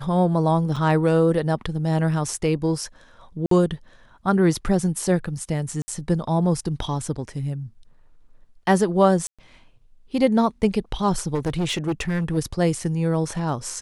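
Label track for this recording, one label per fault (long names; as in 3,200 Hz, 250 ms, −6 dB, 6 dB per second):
0.760000	0.760000	drop-out 4.7 ms
3.460000	3.510000	drop-out 53 ms
5.820000	5.880000	drop-out 60 ms
9.270000	9.390000	drop-out 116 ms
11.340000	12.380000	clipping −19.5 dBFS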